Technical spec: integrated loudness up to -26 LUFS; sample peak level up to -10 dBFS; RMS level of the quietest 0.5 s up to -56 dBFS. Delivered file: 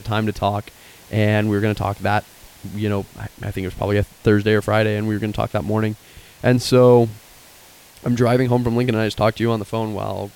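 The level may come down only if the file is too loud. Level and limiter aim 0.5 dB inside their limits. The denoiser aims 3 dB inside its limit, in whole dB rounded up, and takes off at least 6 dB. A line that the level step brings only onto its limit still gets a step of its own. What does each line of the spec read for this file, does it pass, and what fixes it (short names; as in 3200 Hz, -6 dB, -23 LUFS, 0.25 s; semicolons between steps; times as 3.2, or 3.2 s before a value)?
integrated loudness -19.5 LUFS: fail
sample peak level -2.5 dBFS: fail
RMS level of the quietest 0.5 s -46 dBFS: fail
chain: denoiser 6 dB, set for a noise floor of -46 dBFS; gain -7 dB; limiter -10.5 dBFS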